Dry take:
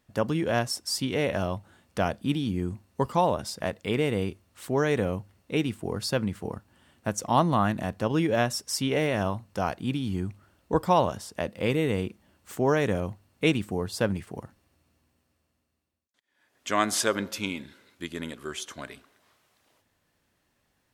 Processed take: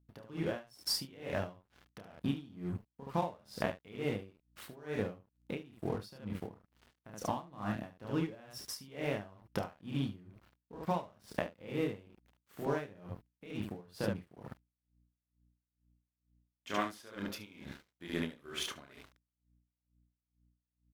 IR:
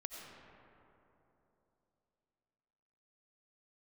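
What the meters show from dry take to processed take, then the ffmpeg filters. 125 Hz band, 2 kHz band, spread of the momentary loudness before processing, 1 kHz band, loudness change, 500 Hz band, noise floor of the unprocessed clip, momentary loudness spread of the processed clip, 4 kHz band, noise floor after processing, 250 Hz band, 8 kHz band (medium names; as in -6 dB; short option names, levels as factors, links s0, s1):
-11.5 dB, -12.0 dB, 13 LU, -13.5 dB, -11.5 dB, -12.5 dB, -74 dBFS, 15 LU, -9.5 dB, under -85 dBFS, -11.0 dB, -13.5 dB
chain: -filter_complex "[0:a]equalizer=f=7600:t=o:w=0.95:g=-11.5,acompressor=threshold=0.0141:ratio=16,asplit=2[s0][s1];[s1]aecho=0:1:29|73:0.596|0.562[s2];[s0][s2]amix=inputs=2:normalize=0,aeval=exprs='sgn(val(0))*max(abs(val(0))-0.00178,0)':c=same,aeval=exprs='val(0)+0.000158*(sin(2*PI*60*n/s)+sin(2*PI*2*60*n/s)/2+sin(2*PI*3*60*n/s)/3+sin(2*PI*4*60*n/s)/4+sin(2*PI*5*60*n/s)/5)':c=same,aeval=exprs='val(0)*pow(10,-23*(0.5-0.5*cos(2*PI*2.2*n/s))/20)':c=same,volume=2.37"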